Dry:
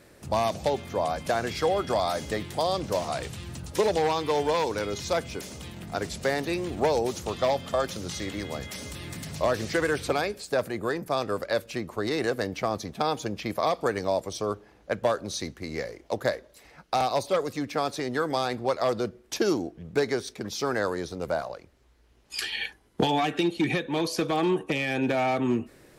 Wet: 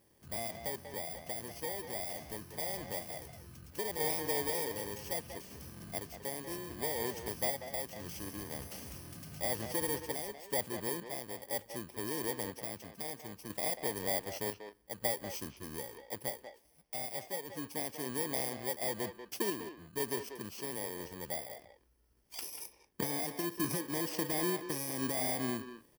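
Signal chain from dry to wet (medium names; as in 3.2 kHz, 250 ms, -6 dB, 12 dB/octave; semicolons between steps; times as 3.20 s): bit-reversed sample order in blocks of 32 samples; random-step tremolo 2 Hz, depth 55%; speakerphone echo 190 ms, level -8 dB; trim -8 dB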